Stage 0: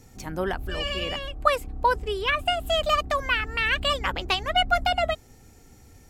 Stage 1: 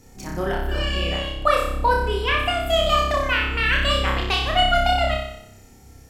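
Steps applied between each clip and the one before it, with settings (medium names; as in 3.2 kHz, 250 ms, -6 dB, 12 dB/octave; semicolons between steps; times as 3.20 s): flutter echo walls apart 5.2 m, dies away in 0.75 s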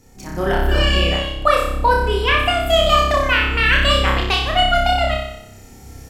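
level rider gain up to 11.5 dB; trim -1 dB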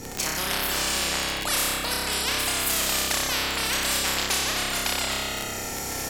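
crackle 23 per s -31 dBFS; spectrum-flattening compressor 10:1; trim -6 dB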